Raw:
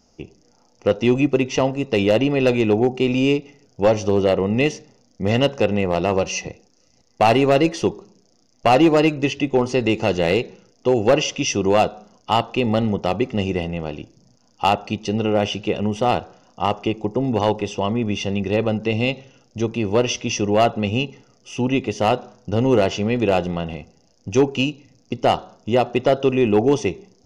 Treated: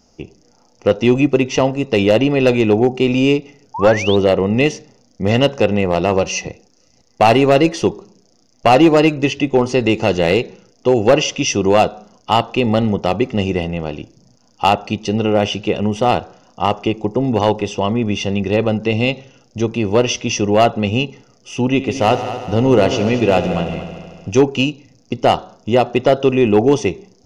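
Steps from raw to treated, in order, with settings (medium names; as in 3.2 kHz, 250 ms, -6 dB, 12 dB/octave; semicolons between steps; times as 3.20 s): 3.74–4.16 s: painted sound rise 840–3900 Hz -28 dBFS; 21.70–24.31 s: multi-head delay 75 ms, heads all three, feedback 56%, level -15 dB; trim +4 dB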